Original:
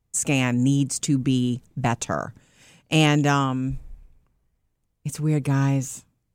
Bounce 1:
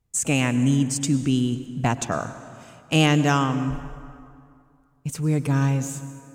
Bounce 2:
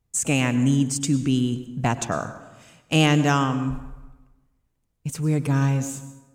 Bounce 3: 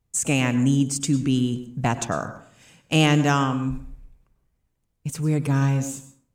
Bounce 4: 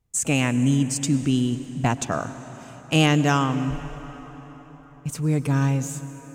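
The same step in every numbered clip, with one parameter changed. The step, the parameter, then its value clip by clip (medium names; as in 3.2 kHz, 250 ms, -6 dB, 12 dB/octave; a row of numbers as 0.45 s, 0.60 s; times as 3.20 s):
plate-style reverb, RT60: 2.4 s, 1.1 s, 0.53 s, 5.1 s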